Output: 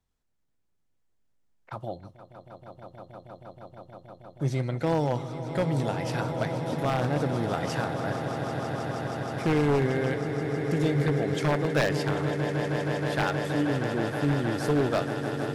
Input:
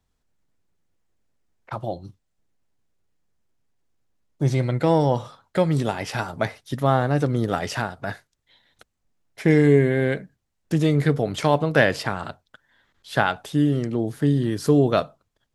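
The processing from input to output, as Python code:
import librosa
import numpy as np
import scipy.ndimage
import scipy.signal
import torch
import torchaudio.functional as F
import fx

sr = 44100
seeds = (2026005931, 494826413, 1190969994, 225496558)

y = fx.echo_swell(x, sr, ms=158, loudest=8, wet_db=-12)
y = 10.0 ** (-10.0 / 20.0) * (np.abs((y / 10.0 ** (-10.0 / 20.0) + 3.0) % 4.0 - 2.0) - 1.0)
y = y * 10.0 ** (-6.5 / 20.0)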